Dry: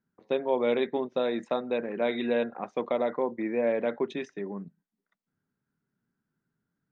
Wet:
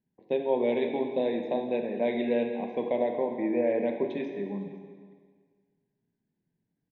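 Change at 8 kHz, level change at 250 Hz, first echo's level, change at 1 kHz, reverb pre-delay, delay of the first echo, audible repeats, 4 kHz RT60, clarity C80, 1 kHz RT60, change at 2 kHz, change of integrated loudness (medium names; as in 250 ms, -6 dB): no reading, +2.0 dB, -23.0 dB, -1.5 dB, 22 ms, 508 ms, 1, 1.6 s, 7.0 dB, 1.7 s, -3.5 dB, +0.5 dB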